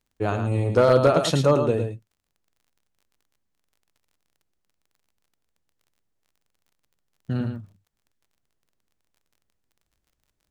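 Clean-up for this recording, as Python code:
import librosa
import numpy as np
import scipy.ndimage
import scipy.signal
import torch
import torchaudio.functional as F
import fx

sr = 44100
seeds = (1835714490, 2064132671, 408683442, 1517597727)

y = fx.fix_declip(x, sr, threshold_db=-9.0)
y = fx.fix_declick_ar(y, sr, threshold=6.5)
y = fx.fix_echo_inverse(y, sr, delay_ms=109, level_db=-7.0)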